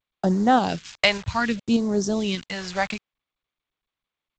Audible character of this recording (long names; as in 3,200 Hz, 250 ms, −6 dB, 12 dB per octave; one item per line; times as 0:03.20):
a quantiser's noise floor 6 bits, dither none
tremolo saw up 1.7 Hz, depth 40%
phaser sweep stages 2, 0.65 Hz, lowest notch 270–2,700 Hz
G.722